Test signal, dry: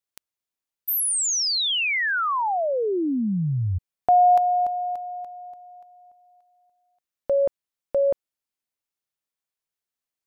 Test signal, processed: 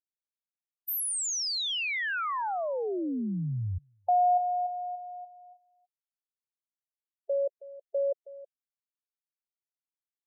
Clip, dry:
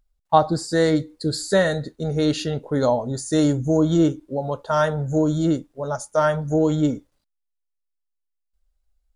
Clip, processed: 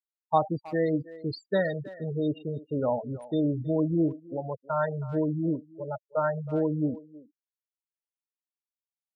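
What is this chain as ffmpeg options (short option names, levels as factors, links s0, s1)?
-filter_complex "[0:a]afftfilt=real='re*gte(hypot(re,im),0.126)':imag='im*gte(hypot(re,im),0.126)':win_size=1024:overlap=0.75,afftdn=nr=19:nf=-30,asplit=2[s0][s1];[s1]adelay=320,highpass=300,lowpass=3400,asoftclip=type=hard:threshold=0.251,volume=0.141[s2];[s0][s2]amix=inputs=2:normalize=0,volume=0.422"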